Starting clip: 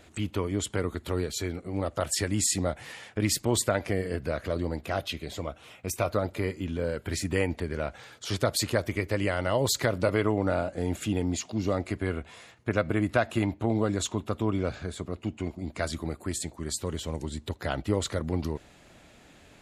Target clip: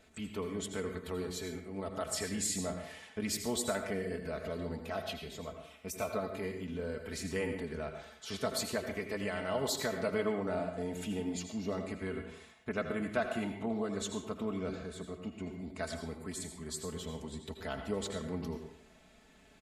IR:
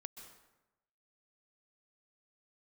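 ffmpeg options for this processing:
-filter_complex "[0:a]aecho=1:1:4.6:0.71[a];[1:a]atrim=start_sample=2205,asetrate=70560,aresample=44100[b];[a][b]afir=irnorm=-1:irlink=0"

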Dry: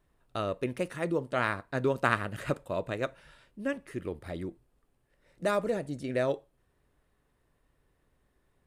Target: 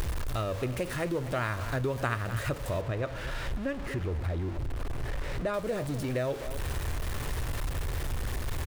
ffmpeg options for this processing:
-filter_complex "[0:a]aeval=exprs='val(0)+0.5*0.0178*sgn(val(0))':c=same,acompressor=mode=upward:threshold=-34dB:ratio=2.5,lowshelf=f=130:t=q:w=1.5:g=9,bandreject=f=50:t=h:w=6,bandreject=f=100:t=h:w=6,aecho=1:1:248:0.168,acompressor=threshold=-33dB:ratio=2.5,asettb=1/sr,asplit=3[a][b][c];[a]atrim=end=2.814[d];[b]atrim=start=2.81:end=5.54,asetpts=PTS-STARTPTS,afade=t=in:d=0.004:c=qsin,afade=t=out:st=2.726:d=0.004:c=qsin,lowpass=f=2.5k:p=1[e];[c]atrim=start=5.536[f];[d][e]acrossfade=d=0.004:c1=hsin:c2=qsin[g];[g][f]acrossfade=d=0.004:c1=qsin:c2=hsin,volume=3dB"

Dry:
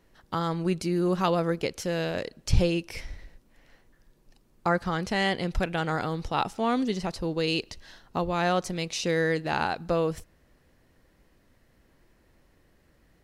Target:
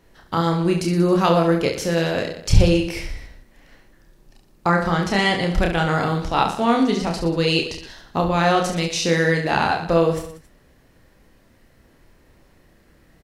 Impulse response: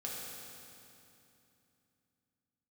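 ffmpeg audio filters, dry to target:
-af "aecho=1:1:30|69|119.7|185.6|271.3:0.631|0.398|0.251|0.158|0.1,volume=6dB"

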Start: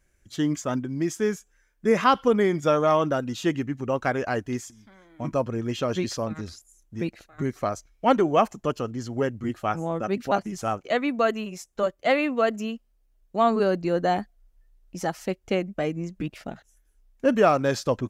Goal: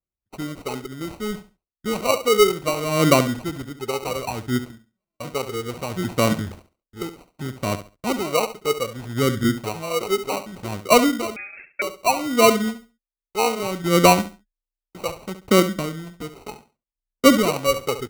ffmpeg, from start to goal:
-filter_complex "[0:a]highpass=f=85:p=1,agate=range=-33dB:threshold=-46dB:ratio=16:detection=peak,acrossover=split=320|990[a][b][c];[c]acompressor=threshold=-43dB:ratio=5[d];[a][b][d]amix=inputs=3:normalize=0,aphaser=in_gain=1:out_gain=1:delay=2.4:decay=0.78:speed=0.64:type=sinusoidal,acrusher=samples=26:mix=1:aa=0.000001,aecho=1:1:69|138|207:0.251|0.0553|0.0122,asettb=1/sr,asplit=3[e][f][g];[e]atrim=end=11.364[h];[f]atrim=start=11.36:end=11.82,asetpts=PTS-STARTPTS,afade=t=in:d=0.004:c=qsin,afade=t=out:st=0.456:d=0.004:c=qsin,lowpass=f=2.3k:t=q:w=0.5098,lowpass=f=2.3k:t=q:w=0.6013,lowpass=f=2.3k:t=q:w=0.9,lowpass=f=2.3k:t=q:w=2.563,afreqshift=-2700[i];[g]atrim=start=11.816[j];[h][i]acrossfade=d=0.004:c1=hsin:c2=qsin[k];[k][j]acrossfade=d=0.004:c1=qsin:c2=hsin,volume=-1dB"

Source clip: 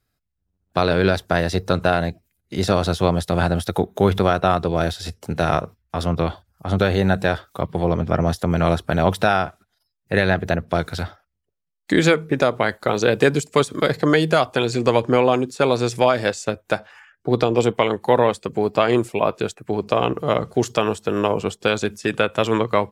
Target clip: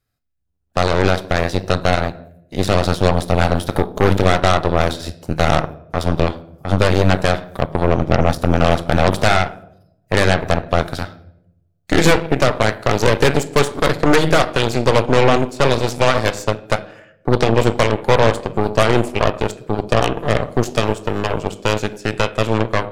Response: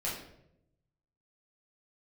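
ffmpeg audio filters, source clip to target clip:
-filter_complex "[0:a]dynaudnorm=f=160:g=31:m=7dB,asplit=2[a][b];[1:a]atrim=start_sample=2205[c];[b][c]afir=irnorm=-1:irlink=0,volume=-11dB[d];[a][d]amix=inputs=2:normalize=0,aeval=exprs='1.26*(cos(1*acos(clip(val(0)/1.26,-1,1)))-cos(1*PI/2))+0.316*(cos(5*acos(clip(val(0)/1.26,-1,1)))-cos(5*PI/2))+0.2*(cos(7*acos(clip(val(0)/1.26,-1,1)))-cos(7*PI/2))+0.355*(cos(8*acos(clip(val(0)/1.26,-1,1)))-cos(8*PI/2))':c=same,volume=-5.5dB"

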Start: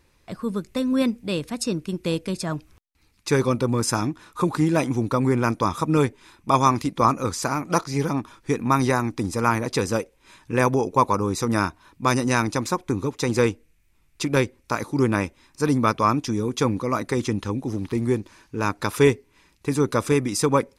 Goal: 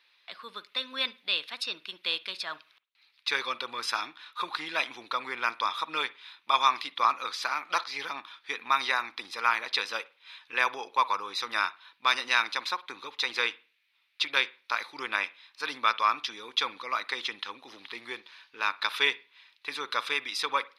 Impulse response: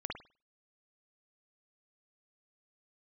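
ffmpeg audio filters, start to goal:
-filter_complex "[0:a]highpass=1.4k,highshelf=f=5.3k:t=q:w=3:g=-12.5,asplit=2[a][b];[1:a]atrim=start_sample=2205[c];[b][c]afir=irnorm=-1:irlink=0,volume=-17dB[d];[a][d]amix=inputs=2:normalize=0"

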